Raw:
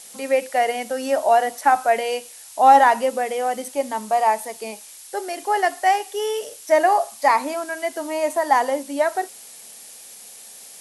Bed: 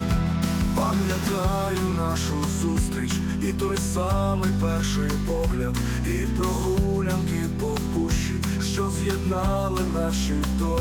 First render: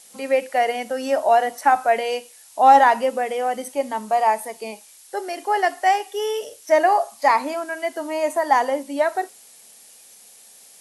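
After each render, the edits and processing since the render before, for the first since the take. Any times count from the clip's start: noise print and reduce 6 dB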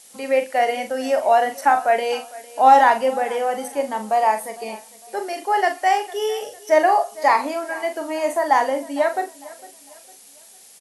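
doubling 42 ms -8 dB; feedback delay 454 ms, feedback 36%, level -20 dB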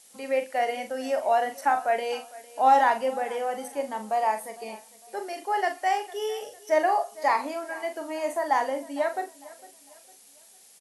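trim -7 dB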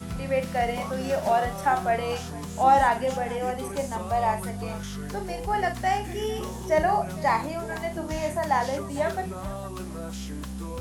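add bed -11 dB

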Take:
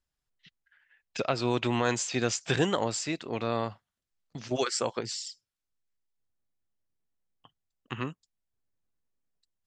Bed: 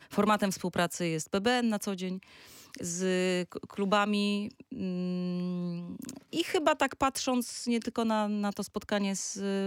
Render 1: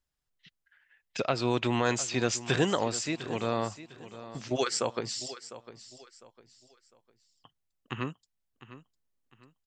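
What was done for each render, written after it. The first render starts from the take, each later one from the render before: feedback delay 703 ms, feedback 32%, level -15 dB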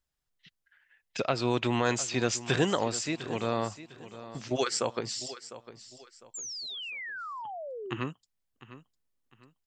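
6.34–7.97 s: painted sound fall 320–7600 Hz -39 dBFS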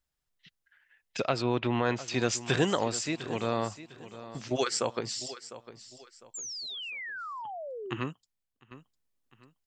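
1.42–2.08 s: distance through air 220 m; 8.10–8.71 s: fade out, to -11.5 dB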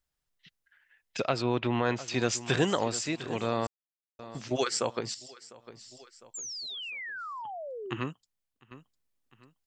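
3.67–4.19 s: mute; 5.14–5.66 s: compression 3:1, threshold -47 dBFS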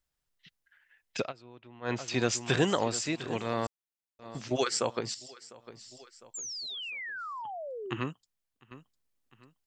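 1.20–1.94 s: dip -23.5 dB, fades 0.13 s; 3.37–4.26 s: transient shaper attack -10 dB, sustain -2 dB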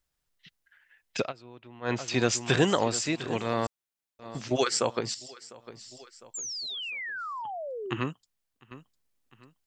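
trim +3 dB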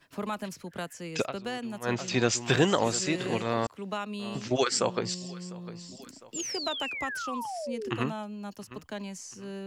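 add bed -8 dB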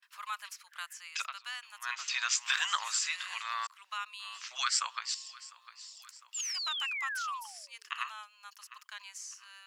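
gate with hold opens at -51 dBFS; elliptic high-pass 1.1 kHz, stop band 80 dB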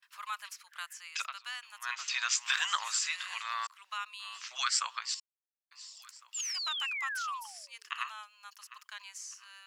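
5.20–5.71 s: mute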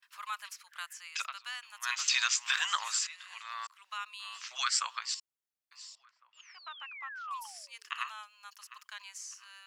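1.83–2.28 s: treble shelf 3.4 kHz +11.5 dB; 3.07–4.18 s: fade in, from -13.5 dB; 5.95–7.31 s: tape spacing loss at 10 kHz 43 dB

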